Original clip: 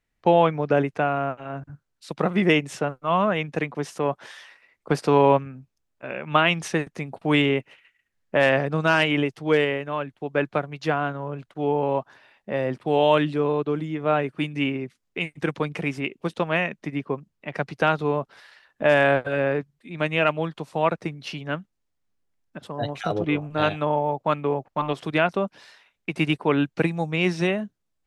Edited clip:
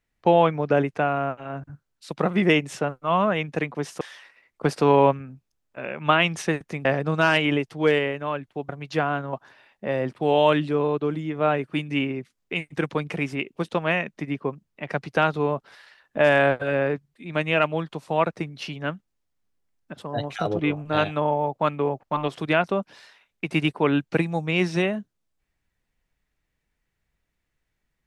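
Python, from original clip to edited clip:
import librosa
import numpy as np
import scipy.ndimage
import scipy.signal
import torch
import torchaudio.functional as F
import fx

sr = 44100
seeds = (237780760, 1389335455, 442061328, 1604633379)

y = fx.edit(x, sr, fx.cut(start_s=4.01, length_s=0.26),
    fx.cut(start_s=7.11, length_s=1.4),
    fx.cut(start_s=10.35, length_s=0.25),
    fx.cut(start_s=11.24, length_s=0.74), tone=tone)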